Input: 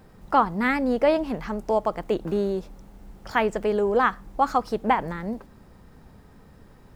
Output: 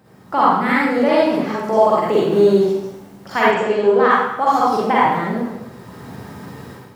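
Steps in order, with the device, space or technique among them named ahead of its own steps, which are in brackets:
far laptop microphone (convolution reverb RT60 0.85 s, pre-delay 39 ms, DRR −7.5 dB; high-pass filter 100 Hz 24 dB per octave; automatic gain control gain up to 12 dB)
0:03.51–0:04.11: low-pass filter 5,800 Hz 12 dB per octave
level −1 dB

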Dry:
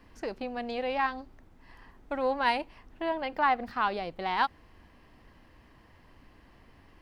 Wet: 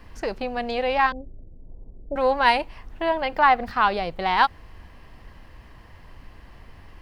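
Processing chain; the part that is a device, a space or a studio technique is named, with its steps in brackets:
0:01.12–0:02.16: Butterworth low-pass 580 Hz 36 dB per octave
low shelf boost with a cut just above (low-shelf EQ 84 Hz +7 dB; parametric band 280 Hz −5.5 dB 0.87 octaves)
level +8.5 dB

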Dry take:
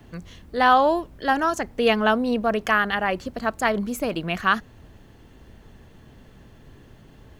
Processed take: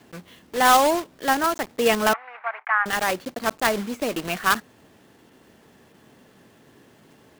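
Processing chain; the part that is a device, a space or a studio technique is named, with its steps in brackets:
early digital voice recorder (band-pass filter 210–3,700 Hz; one scale factor per block 3 bits)
0:02.13–0:02.86: elliptic band-pass filter 790–2,200 Hz, stop band 80 dB

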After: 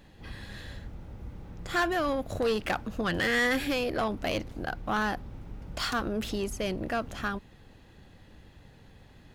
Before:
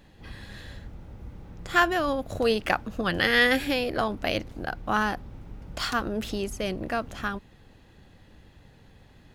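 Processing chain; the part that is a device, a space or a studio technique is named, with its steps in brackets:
saturation between pre-emphasis and de-emphasis (high-shelf EQ 7,500 Hz +9 dB; soft clipping −21.5 dBFS, distortion −9 dB; high-shelf EQ 7,500 Hz −9 dB)

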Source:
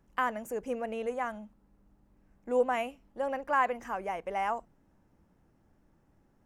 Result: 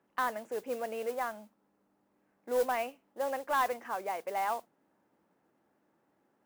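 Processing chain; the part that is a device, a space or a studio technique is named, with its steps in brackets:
carbon microphone (band-pass filter 320–3,200 Hz; soft clipping −21 dBFS, distortion −17 dB; noise that follows the level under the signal 18 dB)

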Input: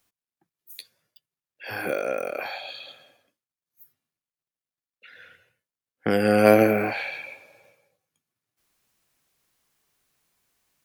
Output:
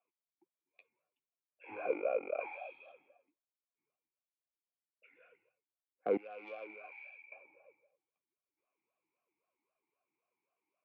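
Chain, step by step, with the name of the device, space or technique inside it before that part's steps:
elliptic band-pass filter 110–2,400 Hz
talk box (tube saturation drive 11 dB, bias 0.3; formant filter swept between two vowels a-u 3.8 Hz)
0:06.17–0:07.32: first difference
level +2.5 dB

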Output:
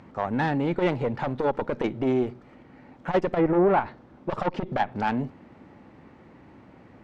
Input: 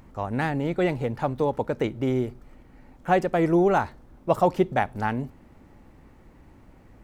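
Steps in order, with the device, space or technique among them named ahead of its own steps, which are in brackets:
valve radio (band-pass filter 130–4,000 Hz; tube saturation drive 20 dB, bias 0.4; saturating transformer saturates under 250 Hz)
0:03.27–0:05.00: treble cut that deepens with the level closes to 1,900 Hz, closed at −23 dBFS
level +6 dB

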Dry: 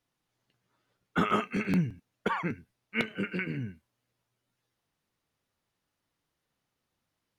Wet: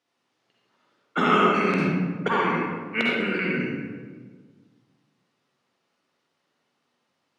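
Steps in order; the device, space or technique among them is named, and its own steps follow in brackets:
supermarket ceiling speaker (band-pass filter 260–6,800 Hz; convolution reverb RT60 1.5 s, pre-delay 46 ms, DRR −4 dB)
level +4.5 dB

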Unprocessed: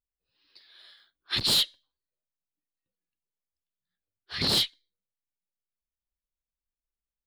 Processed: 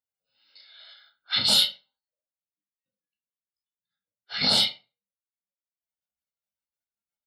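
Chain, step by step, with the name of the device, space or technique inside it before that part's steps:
gate on every frequency bin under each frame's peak −25 dB strong
microphone above a desk (comb filter 1.4 ms, depth 82%; convolution reverb RT60 0.30 s, pre-delay 15 ms, DRR 0 dB)
Bessel high-pass filter 260 Hz, order 2

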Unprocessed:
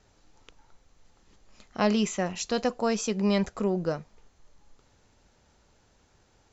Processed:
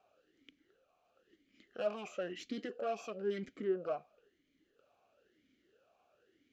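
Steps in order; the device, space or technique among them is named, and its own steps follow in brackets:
talk box (tube saturation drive 29 dB, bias 0.5; formant filter swept between two vowels a-i 1 Hz)
level +7 dB

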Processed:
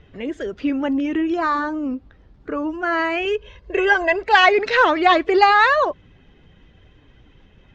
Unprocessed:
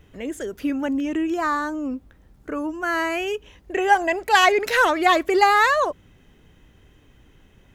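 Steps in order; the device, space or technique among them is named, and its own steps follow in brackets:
clip after many re-uploads (low-pass filter 4,800 Hz 24 dB per octave; spectral magnitudes quantised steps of 15 dB)
0:03.25–0:04.23: comb filter 1.9 ms, depth 71%
level +3 dB

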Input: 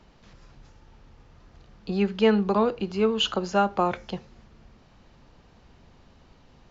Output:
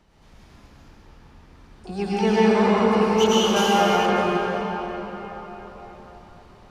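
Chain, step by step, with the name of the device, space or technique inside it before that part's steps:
shimmer-style reverb (pitch-shifted copies added +12 semitones −8 dB; convolution reverb RT60 4.6 s, pre-delay 90 ms, DRR −9 dB)
0:03.56–0:04.06: high-shelf EQ 4,600 Hz +8 dB
level −5 dB

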